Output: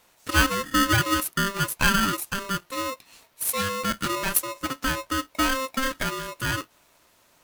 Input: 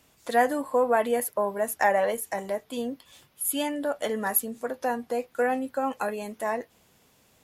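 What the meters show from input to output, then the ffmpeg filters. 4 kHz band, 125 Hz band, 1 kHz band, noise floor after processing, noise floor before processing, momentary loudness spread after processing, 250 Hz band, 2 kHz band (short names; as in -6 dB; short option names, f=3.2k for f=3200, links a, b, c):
+14.0 dB, n/a, +0.5 dB, -62 dBFS, -63 dBFS, 9 LU, +3.5 dB, +7.5 dB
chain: -af "aeval=exprs='val(0)*sgn(sin(2*PI*790*n/s))':c=same,volume=1.5dB"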